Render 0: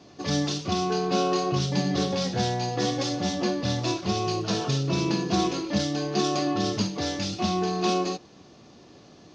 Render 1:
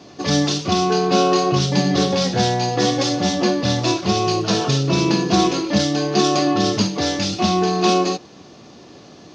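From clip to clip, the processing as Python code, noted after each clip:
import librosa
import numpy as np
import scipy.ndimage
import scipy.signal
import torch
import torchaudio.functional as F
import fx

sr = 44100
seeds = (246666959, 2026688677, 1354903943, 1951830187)

y = fx.low_shelf(x, sr, hz=78.0, db=-7.5)
y = y * librosa.db_to_amplitude(8.5)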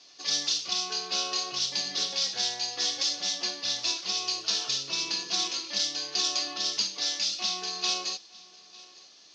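y = fx.bandpass_q(x, sr, hz=4900.0, q=1.3)
y = y + 10.0 ** (-22.0 / 20.0) * np.pad(y, (int(904 * sr / 1000.0), 0))[:len(y)]
y = y * librosa.db_to_amplitude(-1.5)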